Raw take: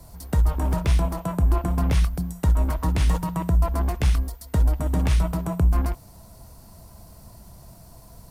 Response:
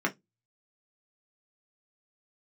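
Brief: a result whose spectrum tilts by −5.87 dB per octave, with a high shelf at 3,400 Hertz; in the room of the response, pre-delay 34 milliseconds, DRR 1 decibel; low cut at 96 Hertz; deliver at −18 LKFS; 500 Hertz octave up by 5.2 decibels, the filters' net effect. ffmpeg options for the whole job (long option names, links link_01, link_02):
-filter_complex "[0:a]highpass=96,equalizer=frequency=500:width_type=o:gain=7,highshelf=frequency=3400:gain=6.5,asplit=2[link_01][link_02];[1:a]atrim=start_sample=2205,adelay=34[link_03];[link_02][link_03]afir=irnorm=-1:irlink=0,volume=-10.5dB[link_04];[link_01][link_04]amix=inputs=2:normalize=0,volume=6.5dB"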